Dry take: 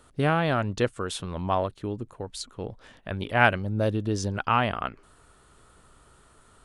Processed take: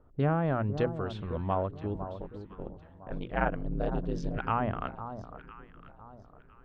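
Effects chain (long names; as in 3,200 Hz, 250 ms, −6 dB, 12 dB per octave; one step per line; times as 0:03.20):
0:01.94–0:04.37: ring modulation 71 Hz
mains-hum notches 60/120/180/240/300/360 Hz
treble cut that deepens with the level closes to 1,300 Hz, closed at −19 dBFS
spectral tilt −1.5 dB per octave
low-pass that shuts in the quiet parts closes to 850 Hz, open at −19.5 dBFS
delay that swaps between a low-pass and a high-pass 504 ms, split 1,200 Hz, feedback 53%, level −10 dB
level −5.5 dB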